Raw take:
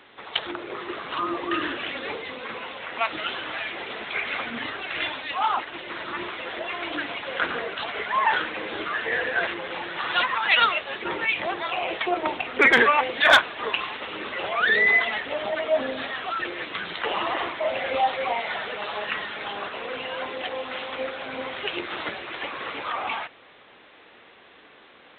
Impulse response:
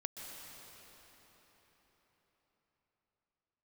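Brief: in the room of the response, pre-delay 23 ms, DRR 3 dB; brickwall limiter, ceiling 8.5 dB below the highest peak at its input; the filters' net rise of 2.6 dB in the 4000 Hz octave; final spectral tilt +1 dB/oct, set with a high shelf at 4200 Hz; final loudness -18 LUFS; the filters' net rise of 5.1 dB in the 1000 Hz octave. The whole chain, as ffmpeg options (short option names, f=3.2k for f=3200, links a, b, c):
-filter_complex "[0:a]equalizer=f=1k:t=o:g=6.5,equalizer=f=4k:t=o:g=4.5,highshelf=f=4.2k:g=-3,alimiter=limit=-10dB:level=0:latency=1,asplit=2[a][b];[1:a]atrim=start_sample=2205,adelay=23[c];[b][c]afir=irnorm=-1:irlink=0,volume=-2.5dB[d];[a][d]amix=inputs=2:normalize=0,volume=4.5dB"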